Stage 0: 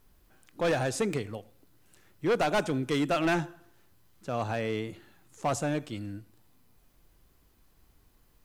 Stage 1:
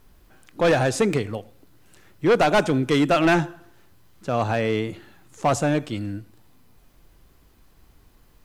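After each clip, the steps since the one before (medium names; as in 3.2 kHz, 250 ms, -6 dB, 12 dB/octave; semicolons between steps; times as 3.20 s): treble shelf 6.6 kHz -5 dB; trim +8.5 dB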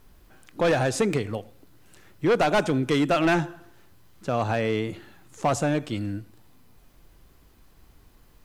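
compression 1.5:1, threshold -24 dBFS, peak gain reduction 3.5 dB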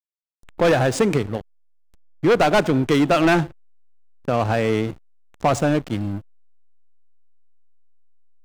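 hysteresis with a dead band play -29.5 dBFS; trim +5.5 dB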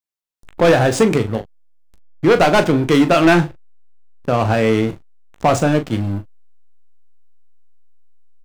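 early reflections 18 ms -11 dB, 40 ms -11 dB; trim +3.5 dB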